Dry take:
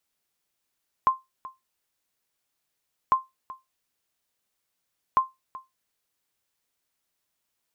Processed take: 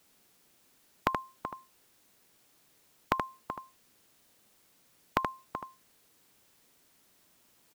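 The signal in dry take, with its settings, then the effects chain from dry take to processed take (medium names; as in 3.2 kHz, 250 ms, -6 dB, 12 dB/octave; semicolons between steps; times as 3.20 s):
sonar ping 1.05 kHz, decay 0.19 s, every 2.05 s, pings 3, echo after 0.38 s, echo -19 dB -11.5 dBFS
peaking EQ 240 Hz +8 dB 2.3 oct; on a send: delay 77 ms -9 dB; on the sum: spectrum-flattening compressor 2:1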